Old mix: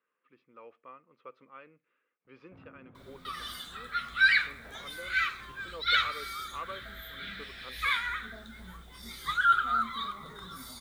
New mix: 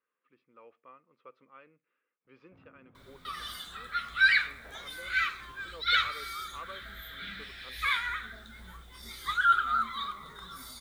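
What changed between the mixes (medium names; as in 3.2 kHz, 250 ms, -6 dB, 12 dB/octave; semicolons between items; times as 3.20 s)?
speech -4.0 dB; first sound -6.0 dB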